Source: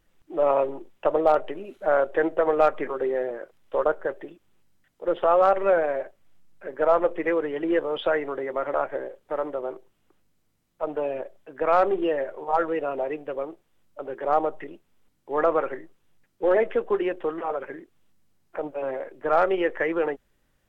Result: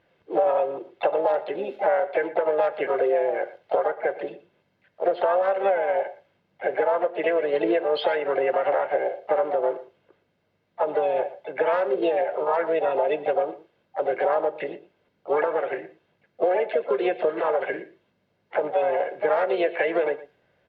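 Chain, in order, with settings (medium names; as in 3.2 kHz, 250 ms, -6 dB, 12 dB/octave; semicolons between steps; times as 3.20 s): high-pass 180 Hz 12 dB/octave; treble shelf 3.1 kHz +12 dB; band-stop 1.1 kHz, Q 6.6; comb 1.9 ms, depth 59%; compression 16:1, threshold -27 dBFS, peak gain reduction 16 dB; harmony voices +5 st -5 dB; distance through air 320 m; delay 118 ms -17 dB; on a send at -16.5 dB: reverberation, pre-delay 3 ms; on the sum: tape noise reduction on one side only decoder only; trim +8 dB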